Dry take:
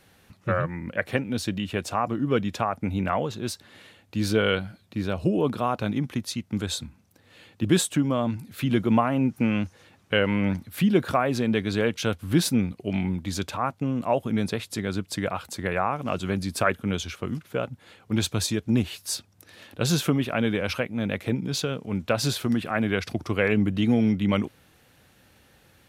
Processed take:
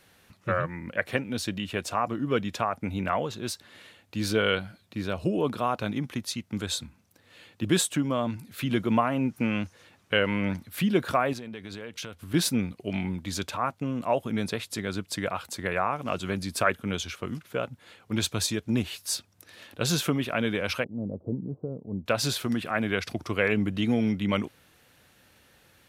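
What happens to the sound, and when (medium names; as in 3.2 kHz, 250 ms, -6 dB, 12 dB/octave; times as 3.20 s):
11.33–12.34 s: compression 8:1, threshold -32 dBFS
20.84–22.06 s: Gaussian low-pass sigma 14 samples
whole clip: bass shelf 430 Hz -5 dB; band-stop 800 Hz, Q 22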